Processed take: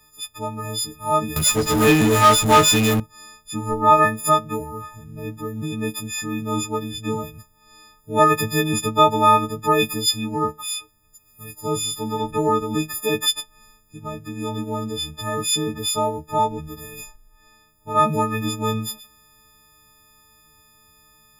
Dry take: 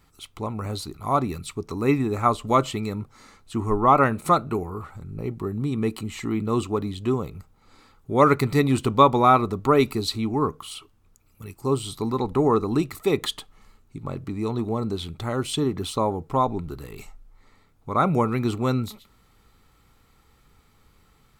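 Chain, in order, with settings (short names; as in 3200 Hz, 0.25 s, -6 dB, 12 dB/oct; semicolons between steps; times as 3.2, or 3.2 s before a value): frequency quantiser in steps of 6 st; 1.36–3 power-law curve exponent 0.5; gain -1.5 dB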